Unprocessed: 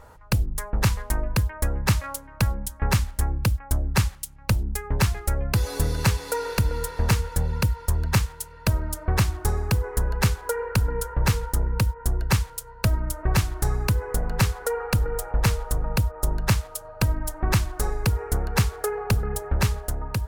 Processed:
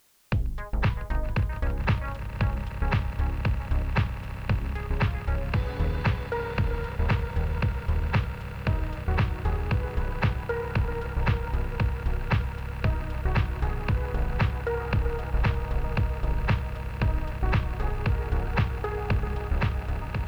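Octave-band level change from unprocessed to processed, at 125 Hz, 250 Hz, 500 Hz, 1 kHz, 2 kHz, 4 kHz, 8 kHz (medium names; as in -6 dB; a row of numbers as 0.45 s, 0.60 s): -2.5 dB, -2.5 dB, -2.5 dB, -2.0 dB, -2.0 dB, -9.0 dB, under -20 dB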